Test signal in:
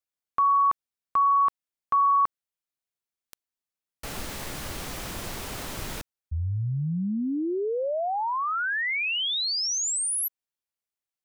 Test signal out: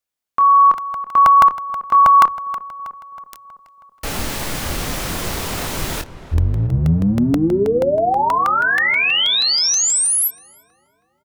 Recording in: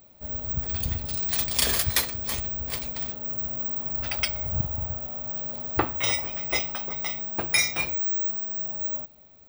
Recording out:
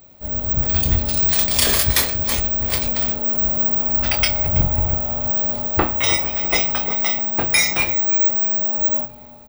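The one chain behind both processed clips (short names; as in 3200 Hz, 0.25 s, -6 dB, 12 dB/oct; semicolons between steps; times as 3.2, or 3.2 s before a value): octaver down 1 oct, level -5 dB; doubler 25 ms -8 dB; in parallel at -0.5 dB: limiter -17.5 dBFS; on the sum: AGC gain up to 4.5 dB; notches 60/120 Hz; on a send: darkening echo 0.328 s, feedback 61%, low-pass 1900 Hz, level -14 dB; on the sum: crackling interface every 0.16 s, samples 64, repeat, from 0.78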